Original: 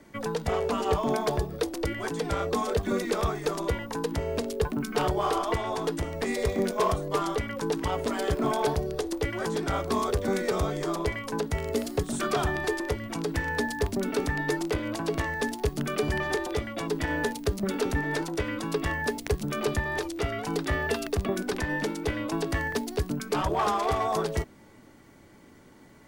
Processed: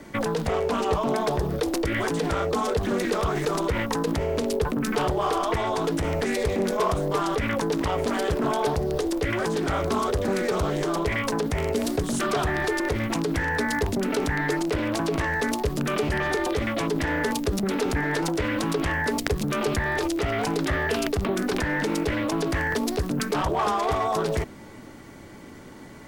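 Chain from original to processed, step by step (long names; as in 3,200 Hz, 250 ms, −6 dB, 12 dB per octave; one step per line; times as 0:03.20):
in parallel at +1 dB: compressor whose output falls as the input rises −35 dBFS, ratio −1
on the sum: highs frequency-modulated by the lows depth 0.41 ms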